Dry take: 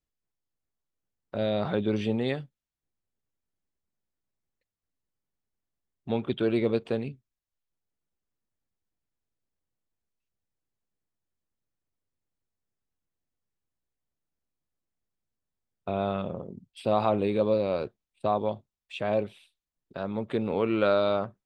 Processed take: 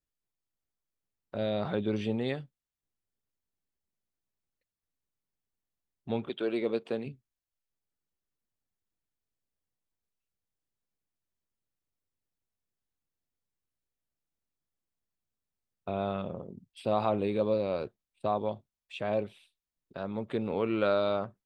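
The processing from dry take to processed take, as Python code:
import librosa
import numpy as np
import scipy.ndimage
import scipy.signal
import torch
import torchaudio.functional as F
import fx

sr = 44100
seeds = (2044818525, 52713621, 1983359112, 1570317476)

y = fx.highpass(x, sr, hz=fx.line((6.28, 370.0), (7.05, 170.0)), slope=12, at=(6.28, 7.05), fade=0.02)
y = y * librosa.db_to_amplitude(-3.5)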